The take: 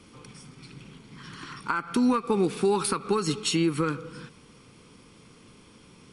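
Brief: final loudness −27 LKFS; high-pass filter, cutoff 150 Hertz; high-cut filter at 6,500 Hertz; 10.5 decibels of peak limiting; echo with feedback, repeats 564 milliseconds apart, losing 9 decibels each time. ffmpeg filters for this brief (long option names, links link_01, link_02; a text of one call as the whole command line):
ffmpeg -i in.wav -af "highpass=150,lowpass=6500,alimiter=limit=-20.5dB:level=0:latency=1,aecho=1:1:564|1128|1692|2256:0.355|0.124|0.0435|0.0152,volume=4dB" out.wav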